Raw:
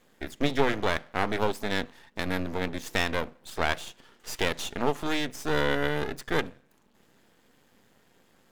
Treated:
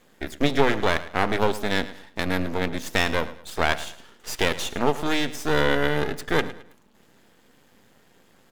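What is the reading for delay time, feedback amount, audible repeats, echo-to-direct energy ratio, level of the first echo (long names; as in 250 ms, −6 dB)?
108 ms, 33%, 2, −15.5 dB, −16.0 dB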